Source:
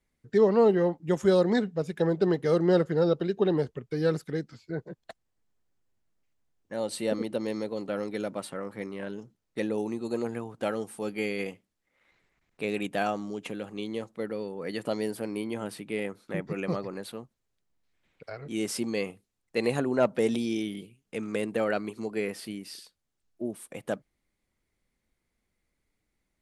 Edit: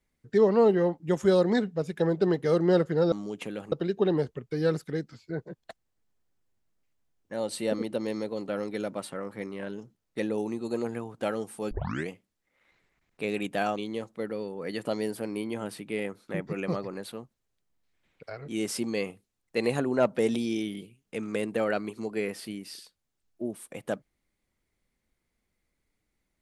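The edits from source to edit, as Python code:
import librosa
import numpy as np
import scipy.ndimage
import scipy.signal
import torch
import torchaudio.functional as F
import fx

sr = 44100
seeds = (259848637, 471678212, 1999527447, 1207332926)

y = fx.edit(x, sr, fx.tape_start(start_s=11.11, length_s=0.38),
    fx.move(start_s=13.16, length_s=0.6, to_s=3.12), tone=tone)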